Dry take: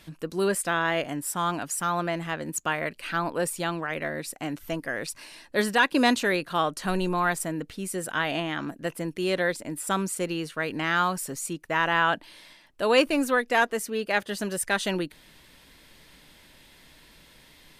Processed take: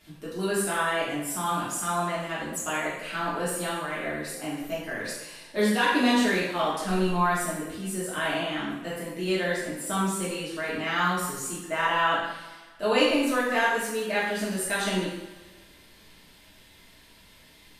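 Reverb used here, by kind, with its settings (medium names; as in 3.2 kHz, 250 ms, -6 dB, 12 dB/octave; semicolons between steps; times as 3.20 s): two-slope reverb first 0.79 s, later 2.1 s, DRR -8 dB; trim -9 dB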